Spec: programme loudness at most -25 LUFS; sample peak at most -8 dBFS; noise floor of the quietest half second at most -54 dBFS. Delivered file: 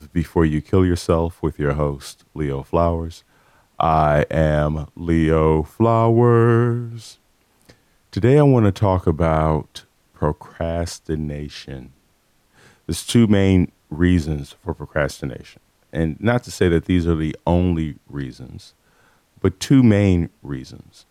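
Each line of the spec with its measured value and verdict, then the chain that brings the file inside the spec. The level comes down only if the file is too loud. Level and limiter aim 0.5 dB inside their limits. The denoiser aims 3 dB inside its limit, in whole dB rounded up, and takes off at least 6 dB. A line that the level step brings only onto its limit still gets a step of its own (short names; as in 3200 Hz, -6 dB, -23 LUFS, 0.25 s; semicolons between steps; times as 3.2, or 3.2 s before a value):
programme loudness -19.0 LUFS: fail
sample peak -3.5 dBFS: fail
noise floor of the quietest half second -61 dBFS: OK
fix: gain -6.5 dB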